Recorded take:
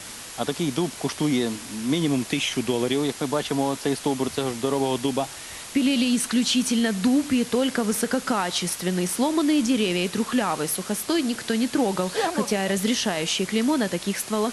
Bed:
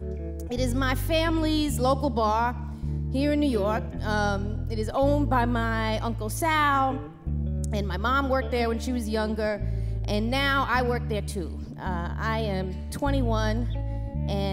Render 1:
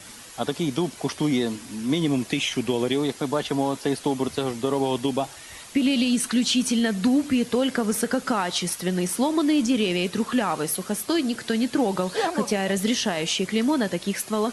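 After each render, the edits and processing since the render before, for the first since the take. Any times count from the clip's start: denoiser 7 dB, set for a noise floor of -39 dBFS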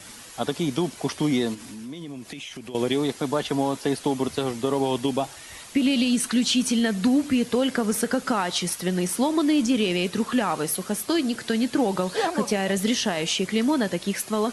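1.54–2.75 compressor 4:1, threshold -36 dBFS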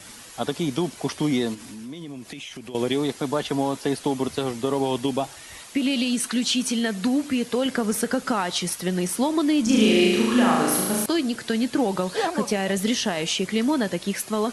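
5.62–7.66 low shelf 160 Hz -8 dB; 9.63–11.06 flutter echo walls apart 6.3 m, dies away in 1.2 s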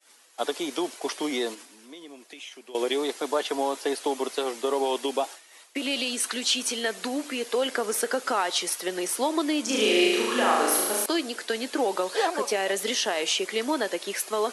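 expander -33 dBFS; HPF 350 Hz 24 dB/oct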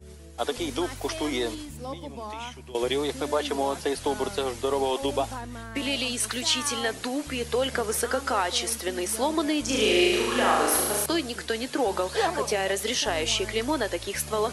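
add bed -13.5 dB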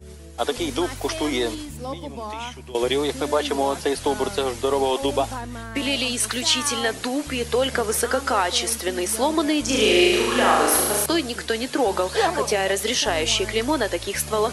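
gain +4.5 dB

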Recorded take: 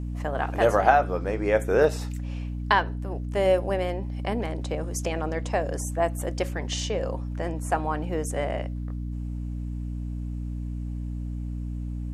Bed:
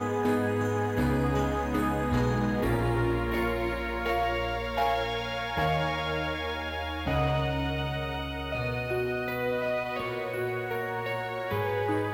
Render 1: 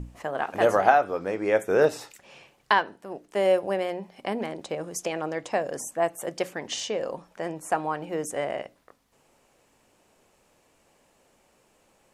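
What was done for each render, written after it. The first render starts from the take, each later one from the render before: notches 60/120/180/240/300 Hz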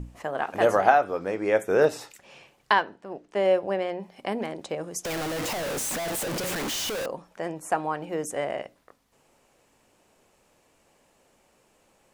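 2.85–4 air absorption 76 m; 5.05–7.06 infinite clipping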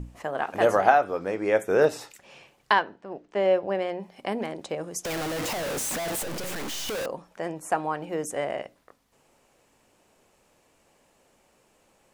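2.79–3.75 air absorption 63 m; 6.22–6.89 half-wave gain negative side -12 dB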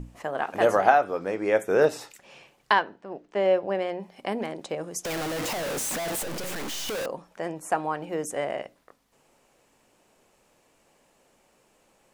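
bell 77 Hz -5.5 dB 0.77 oct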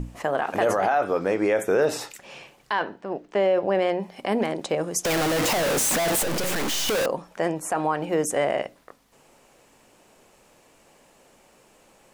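in parallel at -0.5 dB: negative-ratio compressor -28 dBFS, ratio -1; on the sum: limiter -12.5 dBFS, peak gain reduction 8.5 dB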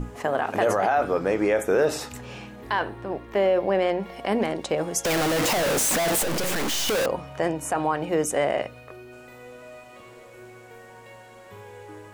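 add bed -14.5 dB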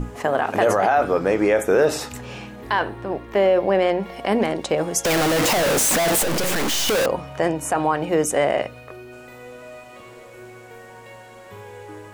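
gain +4 dB

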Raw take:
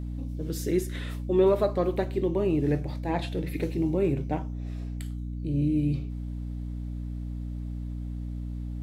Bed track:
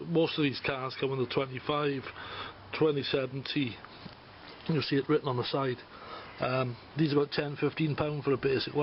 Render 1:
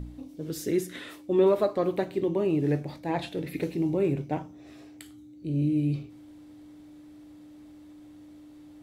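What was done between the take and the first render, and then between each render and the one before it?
de-hum 60 Hz, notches 4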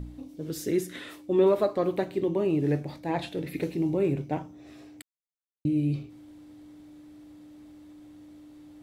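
5.02–5.65 mute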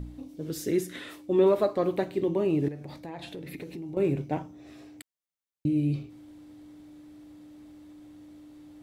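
2.68–3.97 compressor 5:1, threshold -36 dBFS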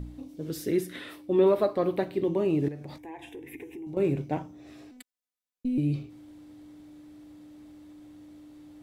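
0.56–2.25 bell 6900 Hz -7.5 dB 0.49 oct; 2.98–3.87 fixed phaser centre 880 Hz, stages 8; 4.91–5.78 robotiser 251 Hz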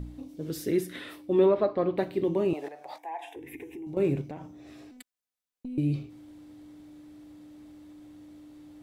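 1.46–1.98 air absorption 180 m; 2.53–3.36 resonant high-pass 740 Hz, resonance Q 3.9; 4.21–5.78 compressor, threshold -35 dBFS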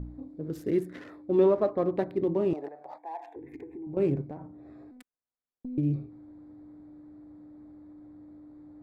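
Wiener smoothing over 15 samples; high shelf 2700 Hz -8 dB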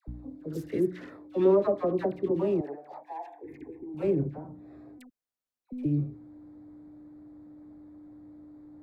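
dispersion lows, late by 80 ms, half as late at 910 Hz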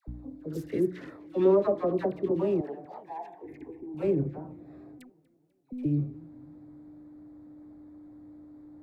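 warbling echo 0.246 s, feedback 55%, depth 219 cents, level -23.5 dB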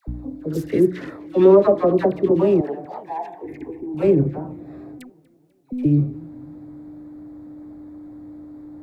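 gain +10.5 dB; limiter -3 dBFS, peak gain reduction 1.5 dB

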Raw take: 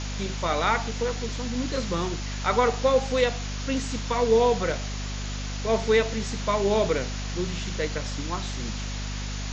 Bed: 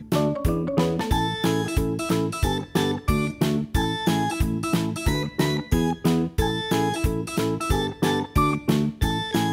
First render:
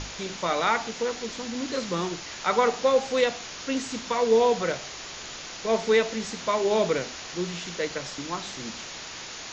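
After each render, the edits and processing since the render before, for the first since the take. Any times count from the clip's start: notches 50/100/150/200/250 Hz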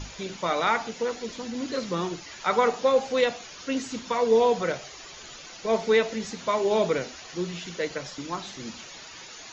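denoiser 10 dB, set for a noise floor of -39 dBFS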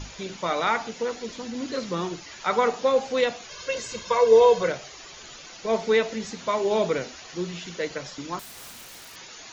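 3.49–4.68 comb 1.9 ms, depth 98%; 8.39–9.16 wrapped overs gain 37.5 dB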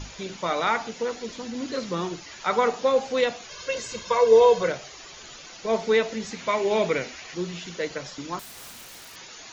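6.31–7.35 bell 2200 Hz +7.5 dB 0.58 oct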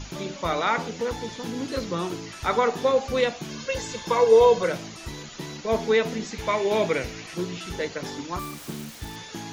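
add bed -14.5 dB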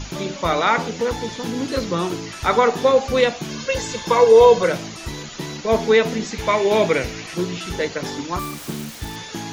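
gain +6 dB; limiter -3 dBFS, peak gain reduction 2.5 dB

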